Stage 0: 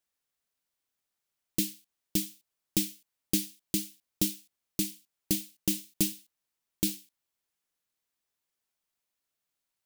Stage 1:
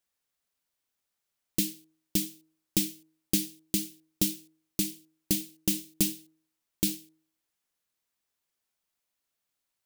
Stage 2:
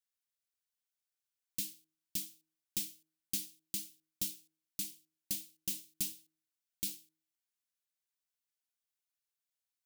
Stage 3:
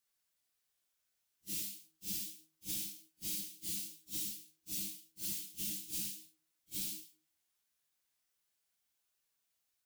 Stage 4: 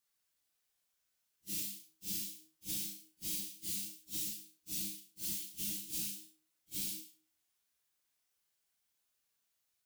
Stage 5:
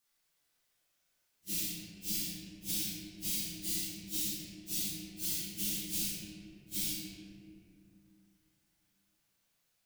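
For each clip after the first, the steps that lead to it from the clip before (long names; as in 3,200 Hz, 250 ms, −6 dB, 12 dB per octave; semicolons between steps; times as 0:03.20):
hum removal 158.4 Hz, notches 6; level +1.5 dB
guitar amp tone stack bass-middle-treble 5-5-5; hollow resonant body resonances 710/1,500 Hz, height 7 dB; level −2 dB
random phases in long frames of 200 ms; downward compressor, threshold −45 dBFS, peak gain reduction 11 dB; level +8 dB
flutter between parallel walls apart 6 metres, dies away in 0.26 s
convolution reverb RT60 2.6 s, pre-delay 6 ms, DRR −2 dB; level +3 dB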